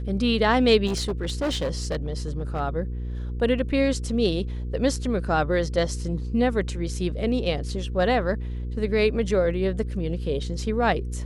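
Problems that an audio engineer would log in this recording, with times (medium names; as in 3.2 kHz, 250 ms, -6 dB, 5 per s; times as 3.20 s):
hum 60 Hz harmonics 8 -30 dBFS
0.86–2.61 s: clipped -21.5 dBFS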